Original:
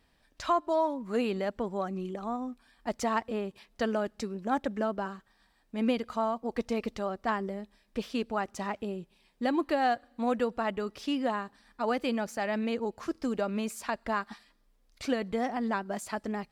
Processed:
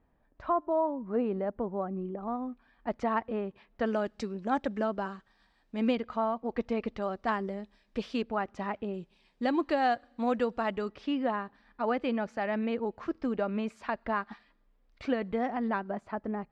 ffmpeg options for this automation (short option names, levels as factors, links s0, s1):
-af "asetnsamples=n=441:p=0,asendcmd='2.28 lowpass f 2100;3.86 lowpass f 5300;5.95 lowpass f 2800;7.02 lowpass f 5200;8.22 lowpass f 2700;8.94 lowpass f 5500;10.89 lowpass f 2600;15.91 lowpass f 1400',lowpass=1100"